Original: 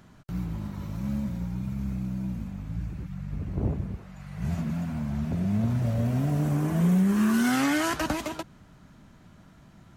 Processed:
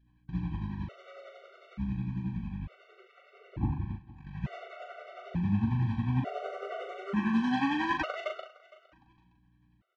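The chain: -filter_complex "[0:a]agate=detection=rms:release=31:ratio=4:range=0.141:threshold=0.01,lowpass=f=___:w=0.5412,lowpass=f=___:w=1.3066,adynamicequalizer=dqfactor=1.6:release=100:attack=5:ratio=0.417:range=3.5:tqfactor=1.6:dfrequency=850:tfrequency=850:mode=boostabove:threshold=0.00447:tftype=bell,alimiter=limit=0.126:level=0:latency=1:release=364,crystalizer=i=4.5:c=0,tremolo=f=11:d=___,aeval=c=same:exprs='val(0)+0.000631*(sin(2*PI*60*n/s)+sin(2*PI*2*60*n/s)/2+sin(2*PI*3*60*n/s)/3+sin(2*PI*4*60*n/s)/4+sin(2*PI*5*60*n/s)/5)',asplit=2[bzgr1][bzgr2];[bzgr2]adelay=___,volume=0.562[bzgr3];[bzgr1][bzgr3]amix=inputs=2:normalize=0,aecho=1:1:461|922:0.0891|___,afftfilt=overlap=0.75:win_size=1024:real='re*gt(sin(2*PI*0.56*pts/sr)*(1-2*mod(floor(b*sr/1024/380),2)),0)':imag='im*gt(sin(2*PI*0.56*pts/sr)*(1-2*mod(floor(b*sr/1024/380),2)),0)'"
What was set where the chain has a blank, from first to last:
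3100, 3100, 0.74, 40, 0.025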